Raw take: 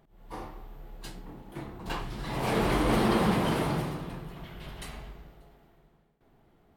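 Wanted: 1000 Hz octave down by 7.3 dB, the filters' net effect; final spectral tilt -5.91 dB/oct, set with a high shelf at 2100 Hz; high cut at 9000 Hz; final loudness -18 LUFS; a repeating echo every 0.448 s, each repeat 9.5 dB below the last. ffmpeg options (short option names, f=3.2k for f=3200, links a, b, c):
-af "lowpass=9k,equalizer=f=1k:t=o:g=-9,highshelf=f=2.1k:g=-3,aecho=1:1:448|896|1344|1792:0.335|0.111|0.0365|0.012,volume=12.5dB"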